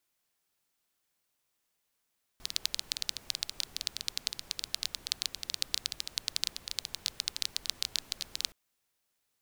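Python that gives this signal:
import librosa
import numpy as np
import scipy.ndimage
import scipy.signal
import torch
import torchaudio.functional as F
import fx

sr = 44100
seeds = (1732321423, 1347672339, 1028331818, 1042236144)

y = fx.rain(sr, seeds[0], length_s=6.12, drops_per_s=13.0, hz=4200.0, bed_db=-17.0)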